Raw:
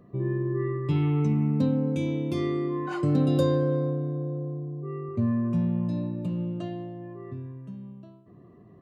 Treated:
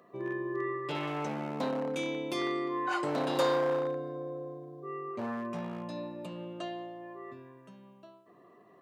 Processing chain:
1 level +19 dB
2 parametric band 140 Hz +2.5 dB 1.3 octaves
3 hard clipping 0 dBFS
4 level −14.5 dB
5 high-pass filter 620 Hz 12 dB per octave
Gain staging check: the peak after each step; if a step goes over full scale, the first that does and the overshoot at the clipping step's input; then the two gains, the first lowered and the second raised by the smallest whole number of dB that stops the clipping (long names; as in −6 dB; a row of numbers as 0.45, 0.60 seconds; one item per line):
+7.5, +8.5, 0.0, −14.5, −15.5 dBFS
step 1, 8.5 dB
step 1 +10 dB, step 4 −5.5 dB